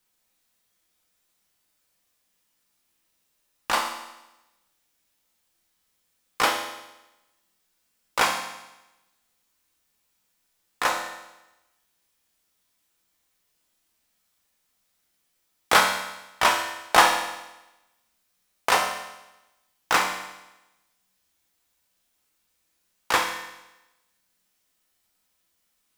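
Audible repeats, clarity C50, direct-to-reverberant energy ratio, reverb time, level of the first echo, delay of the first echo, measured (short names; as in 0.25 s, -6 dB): none, 6.0 dB, 2.0 dB, 1.0 s, none, none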